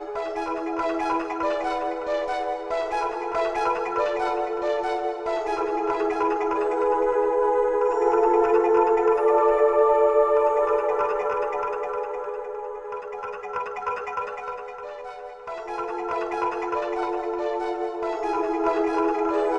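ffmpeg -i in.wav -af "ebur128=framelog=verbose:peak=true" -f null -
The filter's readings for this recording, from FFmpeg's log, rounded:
Integrated loudness:
  I:         -24.2 LUFS
  Threshold: -34.4 LUFS
Loudness range:
  LRA:        11.1 LU
  Threshold: -44.2 LUFS
  LRA low:   -31.0 LUFS
  LRA high:  -19.9 LUFS
True peak:
  Peak:       -7.4 dBFS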